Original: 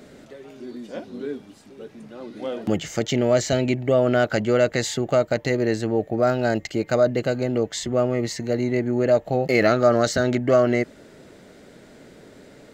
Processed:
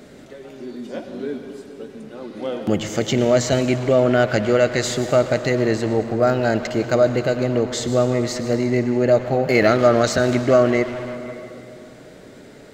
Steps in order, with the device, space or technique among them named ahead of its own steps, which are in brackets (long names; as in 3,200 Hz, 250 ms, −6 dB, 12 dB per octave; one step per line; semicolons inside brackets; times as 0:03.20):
saturated reverb return (on a send at −5 dB: convolution reverb RT60 2.5 s, pre-delay 90 ms + soft clipping −23 dBFS, distortion −9 dB)
on the sum: level +2.5 dB